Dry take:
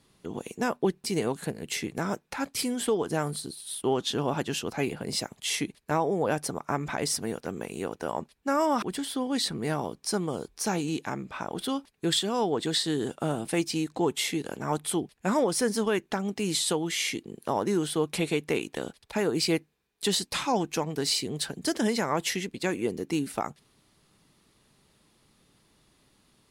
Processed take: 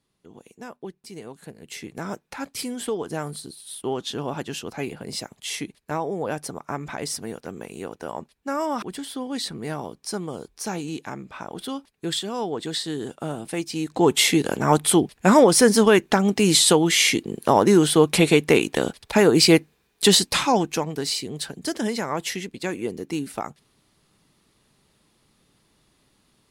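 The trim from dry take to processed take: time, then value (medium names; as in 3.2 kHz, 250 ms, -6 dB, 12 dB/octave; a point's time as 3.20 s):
1.27 s -11 dB
2.10 s -1 dB
13.70 s -1 dB
14.14 s +11 dB
20.12 s +11 dB
21.13 s +0.5 dB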